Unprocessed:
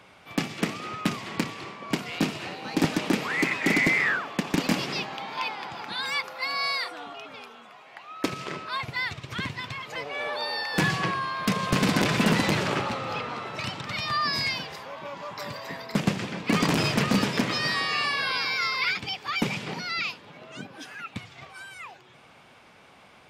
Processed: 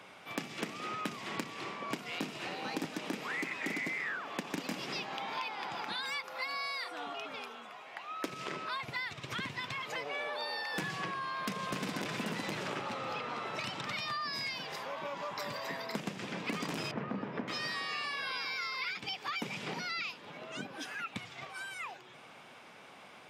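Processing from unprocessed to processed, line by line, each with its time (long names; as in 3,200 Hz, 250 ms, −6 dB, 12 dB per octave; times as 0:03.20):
0:16.91–0:17.48: low-pass filter 1,400 Hz
whole clip: Bessel high-pass filter 180 Hz, order 2; notch filter 4,400 Hz, Q 24; downward compressor 6 to 1, threshold −35 dBFS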